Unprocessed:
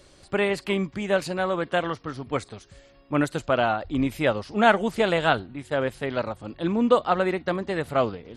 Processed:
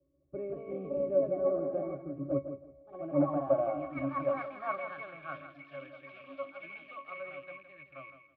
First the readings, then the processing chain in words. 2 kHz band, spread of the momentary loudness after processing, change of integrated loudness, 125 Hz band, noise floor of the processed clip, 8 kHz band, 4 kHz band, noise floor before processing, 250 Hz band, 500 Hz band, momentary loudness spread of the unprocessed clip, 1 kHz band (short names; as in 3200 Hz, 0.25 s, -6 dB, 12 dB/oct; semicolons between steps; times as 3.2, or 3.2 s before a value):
-17.5 dB, 19 LU, -9.0 dB, -12.0 dB, -65 dBFS, under -35 dB, under -25 dB, -55 dBFS, -11.0 dB, -8.0 dB, 10 LU, -13.5 dB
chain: rattling part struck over -32 dBFS, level -23 dBFS; band-pass sweep 390 Hz -> 2100 Hz, 2.47–6.1; echoes that change speed 0.22 s, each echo +2 st, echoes 3; low shelf 140 Hz +10.5 dB; octave resonator C#, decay 0.14 s; feedback echo 0.164 s, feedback 26%, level -9 dB; three-band expander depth 40%; gain +6 dB